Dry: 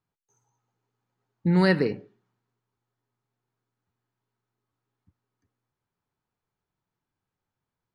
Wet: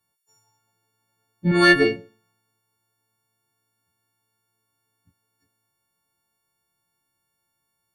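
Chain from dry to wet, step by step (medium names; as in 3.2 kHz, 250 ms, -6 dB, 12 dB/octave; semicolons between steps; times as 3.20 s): partials quantised in pitch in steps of 4 st; 1.51–1.96 s: comb 2.8 ms, depth 67%; Chebyshev shaper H 2 -17 dB, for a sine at -6.5 dBFS; trim +3.5 dB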